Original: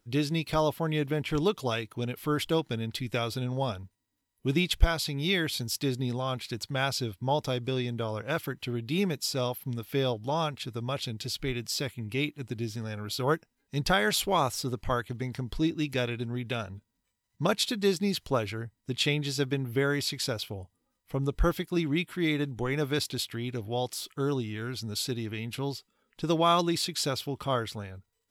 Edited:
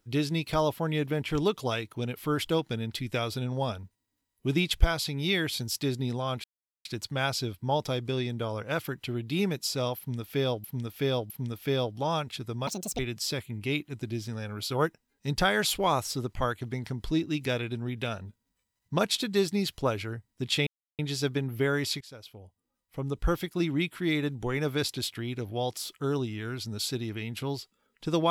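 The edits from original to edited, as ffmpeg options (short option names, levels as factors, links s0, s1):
-filter_complex "[0:a]asplit=8[s0][s1][s2][s3][s4][s5][s6][s7];[s0]atrim=end=6.44,asetpts=PTS-STARTPTS,afade=t=out:st=6.436:d=0.004:c=hsin,apad=pad_dur=0.41[s8];[s1]atrim=start=6.44:end=10.232,asetpts=PTS-STARTPTS,afade=t=in:d=0.004:c=hsin[s9];[s2]atrim=start=9.568:end=10.232[s10];[s3]atrim=start=9.568:end=10.944[s11];[s4]atrim=start=10.94:end=11.47,asetpts=PTS-STARTPTS,asetrate=73647,aresample=44100[s12];[s5]atrim=start=11.466:end=19.15,asetpts=PTS-STARTPTS,afade=t=out:st=7.68:d=0.004:c=hsin,apad=pad_dur=0.32[s13];[s6]atrim=start=19.15:end=20.17,asetpts=PTS-STARTPTS,afade=t=in:d=0.004:c=hsin,afade=t=out:st=1.016:d=0.004:c=hsin:silence=0.0944061[s14];[s7]atrim=start=20.17,asetpts=PTS-STARTPTS,afade=t=in:d=1.56:silence=0.0944061[s15];[s8][s9]concat=n=2:v=0:a=1[s16];[s16][s10]acrossfade=d=0.004:c1=hsin:c2=hsin[s17];[s17][s11]acrossfade=d=0.004:c1=hsin:c2=hsin[s18];[s18][s12]acrossfade=d=0.004:c1=hsin:c2=hsin[s19];[s13][s14][s15]concat=n=3:v=0:a=1[s20];[s19][s20]acrossfade=d=0.004:c1=hsin:c2=hsin"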